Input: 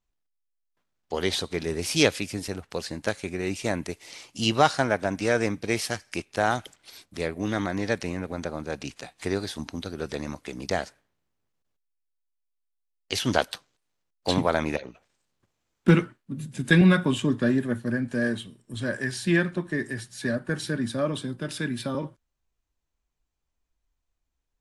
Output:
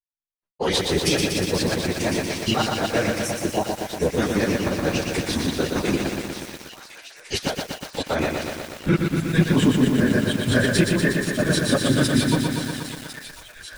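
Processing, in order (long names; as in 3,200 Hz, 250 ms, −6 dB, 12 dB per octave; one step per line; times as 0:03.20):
reversed piece by piece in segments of 38 ms
camcorder AGC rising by 7.4 dB per second
gain on a spectral selection 0:05.77–0:07.44, 1,100–5,400 Hz −30 dB
downward expander −54 dBFS
brickwall limiter −13.5 dBFS, peak gain reduction 10.5 dB
gate pattern "x..xxxxx..x" 197 BPM −60 dB
time stretch by phase vocoder 0.56×
delay with a high-pass on its return 1,052 ms, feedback 79%, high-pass 1,400 Hz, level −12 dB
feedback echo at a low word length 120 ms, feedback 80%, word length 8 bits, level −4 dB
level +8.5 dB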